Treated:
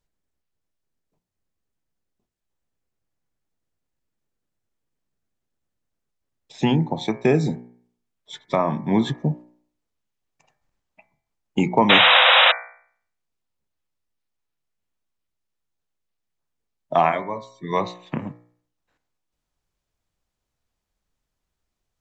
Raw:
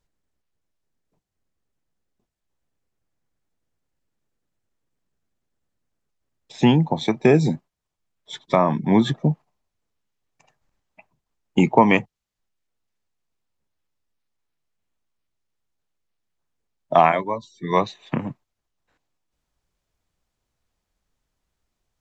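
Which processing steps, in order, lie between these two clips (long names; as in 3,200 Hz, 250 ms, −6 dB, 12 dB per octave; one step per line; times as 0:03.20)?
sound drawn into the spectrogram noise, 0:11.89–0:12.52, 480–3,900 Hz −11 dBFS
hum removal 60.04 Hz, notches 39
level −2.5 dB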